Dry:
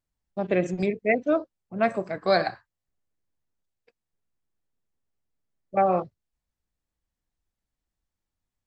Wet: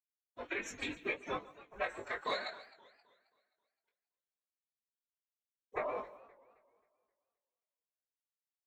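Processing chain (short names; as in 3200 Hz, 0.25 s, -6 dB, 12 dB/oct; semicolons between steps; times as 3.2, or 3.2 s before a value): opening faded in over 0.92 s; gate with hold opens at -46 dBFS; HPF 1500 Hz 12 dB/oct; compressor 12:1, threshold -38 dBFS, peak gain reduction 16 dB; whisperiser; frequency shift -140 Hz; echo 0.143 s -18.5 dB; formant-preserving pitch shift +9.5 st; Butterworth band-stop 4800 Hz, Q 5.1; doubler 20 ms -5.5 dB; warbling echo 0.264 s, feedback 40%, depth 149 cents, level -19.5 dB; gain +5 dB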